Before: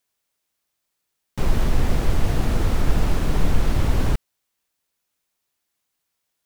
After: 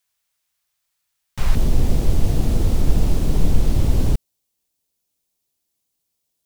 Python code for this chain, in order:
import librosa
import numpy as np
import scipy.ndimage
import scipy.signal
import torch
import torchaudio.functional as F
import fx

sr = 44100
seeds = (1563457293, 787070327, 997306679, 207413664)

y = fx.peak_eq(x, sr, hz=fx.steps((0.0, 330.0), (1.55, 1500.0)), db=-12.5, octaves=2.0)
y = F.gain(torch.from_numpy(y), 3.0).numpy()